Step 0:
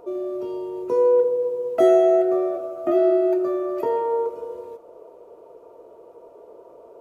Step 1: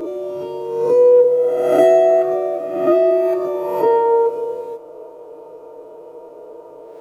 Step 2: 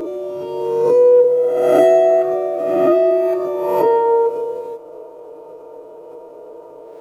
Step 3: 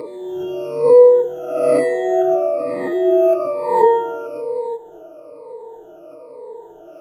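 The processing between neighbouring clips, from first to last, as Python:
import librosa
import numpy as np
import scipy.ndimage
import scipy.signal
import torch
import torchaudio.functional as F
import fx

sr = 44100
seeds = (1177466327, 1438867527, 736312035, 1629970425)

y1 = fx.spec_swells(x, sr, rise_s=1.03)
y1 = y1 + 0.84 * np.pad(y1, (int(6.5 * sr / 1000.0), 0))[:len(y1)]
y1 = y1 * 10.0 ** (3.0 / 20.0)
y2 = fx.pre_swell(y1, sr, db_per_s=31.0)
y3 = fx.spec_ripple(y2, sr, per_octave=0.96, drift_hz=-1.1, depth_db=23)
y3 = y3 * 10.0 ** (-5.5 / 20.0)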